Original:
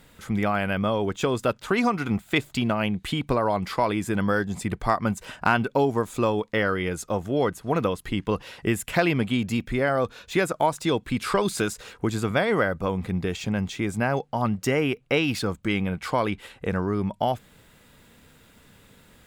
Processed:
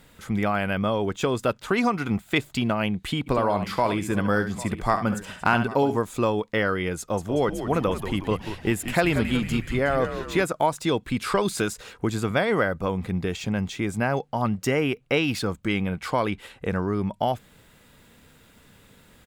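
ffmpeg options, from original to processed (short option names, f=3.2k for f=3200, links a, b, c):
-filter_complex "[0:a]asplit=3[a][b][c];[a]afade=t=out:st=3.26:d=0.02[d];[b]aecho=1:1:68|800:0.335|0.15,afade=t=in:st=3.26:d=0.02,afade=t=out:st=5.96:d=0.02[e];[c]afade=t=in:st=5.96:d=0.02[f];[d][e][f]amix=inputs=3:normalize=0,asettb=1/sr,asplit=3[g][h][i];[g]atrim=end=6.994[j];[h]atrim=start=6.99:end=10.45,asetpts=PTS-STARTPTS,afade=t=in:d=0.004:c=qsin,afade=t=out:st=3.456:d=0.004:c=qsin,asplit=7[k][l][m][n][o][p][q];[l]adelay=184,afreqshift=-100,volume=-9dB[r];[m]adelay=368,afreqshift=-200,volume=-14.2dB[s];[n]adelay=552,afreqshift=-300,volume=-19.4dB[t];[o]adelay=736,afreqshift=-400,volume=-24.6dB[u];[p]adelay=920,afreqshift=-500,volume=-29.8dB[v];[q]adelay=1104,afreqshift=-600,volume=-35dB[w];[k][r][s][t][u][v][w]amix=inputs=7:normalize=0,atrim=end_sample=152586[x];[i]atrim=start=10.446[y];[j][x]acrossfade=d=0.004:c1=hsin:c2=qsin[z];[z][y]acrossfade=d=0.004:c1=qsin:c2=hsin"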